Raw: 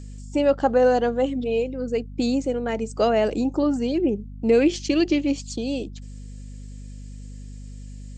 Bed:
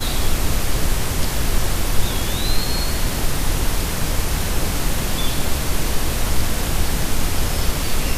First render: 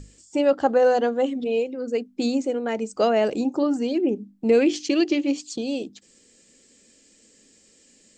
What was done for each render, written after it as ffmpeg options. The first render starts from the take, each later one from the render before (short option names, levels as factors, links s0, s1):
-af "bandreject=f=50:t=h:w=6,bandreject=f=100:t=h:w=6,bandreject=f=150:t=h:w=6,bandreject=f=200:t=h:w=6,bandreject=f=250:t=h:w=6,bandreject=f=300:t=h:w=6"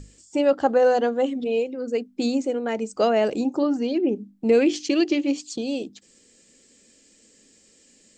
-filter_complex "[0:a]asettb=1/sr,asplit=3[s0][s1][s2];[s0]atrim=end=3.644[s3];[s1]atrim=start=3.64:end=4.15,asetpts=PTS-STARTPTS,afade=t=in:d=0.004:c=qsin,afade=t=out:st=0.506:d=0.004:c=qsin,lowpass=f=6200:w=0.5412,lowpass=f=6200:w=1.3066[s4];[s2]atrim=start=4.146[s5];[s3][s4]acrossfade=d=0.004:c1=hsin:c2=qsin[s6];[s6][s5]acrossfade=d=0.004:c1=qsin:c2=hsin"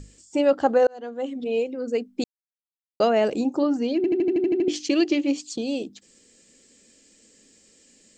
-filter_complex "[0:a]asplit=13[s0][s1][s2][s3][s4][s5][s6][s7][s8][s9][s10][s11][s12];[s0]atrim=end=0.87,asetpts=PTS-STARTPTS,afade=t=out:st=0.866:d=0.004:c=hsin[s13];[s1]atrim=start=0.87:end=2.24,asetpts=PTS-STARTPTS,afade=t=in:d=0.78,afade=t=out:st=1.366:d=0.004:c=hsin[s14];[s2]atrim=start=2.24:end=3,asetpts=PTS-STARTPTS,volume=0[s15];[s3]atrim=start=3:end=4.042,asetpts=PTS-STARTPTS,afade=t=in:d=0.004:c=hsin[s16];[s4]atrim=start=3.958:end=4.042[s17];[s5]atrim=start=3.958:end=4.042[s18];[s6]atrim=start=3.958:end=4.042[s19];[s7]atrim=start=3.958:end=4.042[s20];[s8]atrim=start=3.958:end=4.042[s21];[s9]atrim=start=3.958:end=4.042[s22];[s10]atrim=start=3.958:end=4.042[s23];[s11]atrim=start=3.958:end=4.042[s24];[s12]atrim=start=4.678[s25];[s13][s14][s15][s16]concat=n=4:v=0:a=1[s26];[s26][s17]acrossfade=d=0.004:c1=hsin:c2=hsin[s27];[s27][s18]acrossfade=d=0.004:c1=hsin:c2=hsin[s28];[s28][s19]acrossfade=d=0.004:c1=hsin:c2=hsin[s29];[s29][s20]acrossfade=d=0.004:c1=hsin:c2=hsin[s30];[s30][s21]acrossfade=d=0.004:c1=hsin:c2=hsin[s31];[s31][s22]acrossfade=d=0.004:c1=hsin:c2=hsin[s32];[s32][s23]acrossfade=d=0.004:c1=hsin:c2=hsin[s33];[s33][s24]acrossfade=d=0.004:c1=hsin:c2=hsin[s34];[s34][s25]acrossfade=d=0.004:c1=hsin:c2=hsin"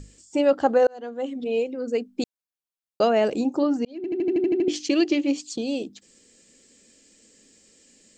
-filter_complex "[0:a]asettb=1/sr,asplit=3[s0][s1][s2];[s0]atrim=end=2.014[s3];[s1]atrim=start=2.01:end=3.15,asetpts=PTS-STARTPTS,afade=t=in:d=0.004:c=qsin,afade=t=out:st=1.136:d=0.004:c=qsin,bandreject=f=2000:w=12[s4];[s2]atrim=start=3.146[s5];[s3][s4]acrossfade=d=0.004:c1=hsin:c2=qsin[s6];[s6][s5]acrossfade=d=0.004:c1=qsin:c2=hsin,asplit=2[s7][s8];[s7]atrim=end=3.85,asetpts=PTS-STARTPTS,afade=t=out:st=3.846:d=0.004:c=hsin[s9];[s8]atrim=start=3.85,asetpts=PTS-STARTPTS,afade=t=in:d=0.49[s10];[s9][s10]concat=n=2:v=0:a=1"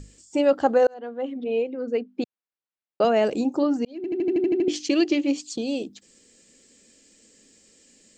-filter_complex "[0:a]asettb=1/sr,asplit=3[s0][s1][s2];[s0]atrim=end=0.944[s3];[s1]atrim=start=0.94:end=3.05,asetpts=PTS-STARTPTS,afade=t=in:d=0.004:c=qsin,afade=t=out:st=2.106:d=0.004:c=qsin,highpass=150,lowpass=3000[s4];[s2]atrim=start=3.046[s5];[s3][s4]acrossfade=d=0.004:c1=hsin:c2=qsin[s6];[s6][s5]acrossfade=d=0.004:c1=qsin:c2=hsin"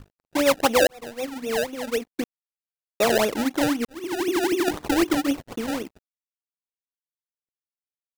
-af "acrusher=samples=28:mix=1:aa=0.000001:lfo=1:lforange=28:lforate=3.9,aeval=exprs='sgn(val(0))*max(abs(val(0))-0.00531,0)':c=same"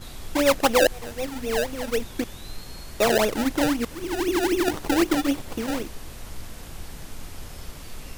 -filter_complex "[1:a]volume=0.119[s0];[0:a][s0]amix=inputs=2:normalize=0"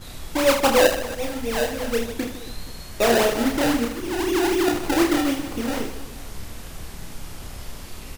-filter_complex "[0:a]asplit=2[s0][s1];[s1]adelay=47,volume=0.2[s2];[s0][s2]amix=inputs=2:normalize=0,aecho=1:1:30|78|154.8|277.7|474.3:0.631|0.398|0.251|0.158|0.1"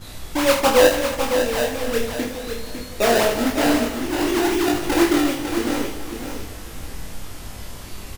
-filter_complex "[0:a]asplit=2[s0][s1];[s1]adelay=20,volume=0.596[s2];[s0][s2]amix=inputs=2:normalize=0,aecho=1:1:553|1106|1659:0.422|0.105|0.0264"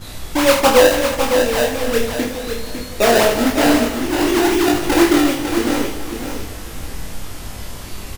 -af "volume=1.68,alimiter=limit=0.794:level=0:latency=1"